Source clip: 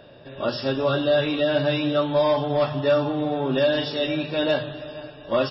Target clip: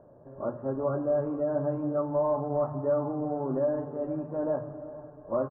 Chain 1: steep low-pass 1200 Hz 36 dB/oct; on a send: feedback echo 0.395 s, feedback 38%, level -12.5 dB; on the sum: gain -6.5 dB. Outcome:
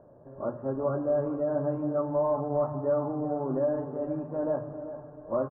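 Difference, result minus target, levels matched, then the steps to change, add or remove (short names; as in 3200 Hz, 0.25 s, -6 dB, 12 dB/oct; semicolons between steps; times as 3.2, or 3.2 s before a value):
echo-to-direct +6.5 dB
change: feedback echo 0.395 s, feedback 38%, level -19 dB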